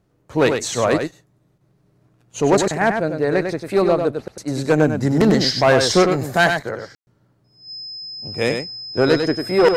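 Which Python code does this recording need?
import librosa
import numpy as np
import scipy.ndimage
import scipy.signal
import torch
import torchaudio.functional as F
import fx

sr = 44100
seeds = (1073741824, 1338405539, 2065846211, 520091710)

y = fx.notch(x, sr, hz=5100.0, q=30.0)
y = fx.fix_ambience(y, sr, seeds[0], print_start_s=1.34, print_end_s=1.84, start_s=6.95, end_s=7.07)
y = fx.fix_echo_inverse(y, sr, delay_ms=98, level_db=-6.0)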